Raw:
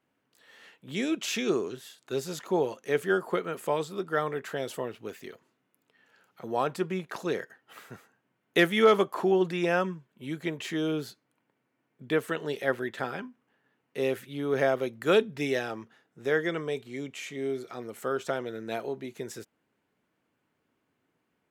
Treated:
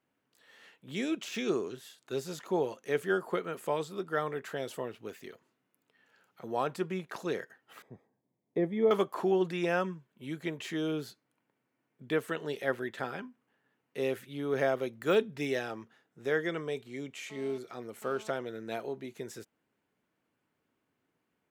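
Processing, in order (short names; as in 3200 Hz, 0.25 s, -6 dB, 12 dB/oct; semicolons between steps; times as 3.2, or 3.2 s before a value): de-esser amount 85%; 7.82–8.91 running mean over 31 samples; 17.3–18.3 GSM buzz -50 dBFS; gain -3.5 dB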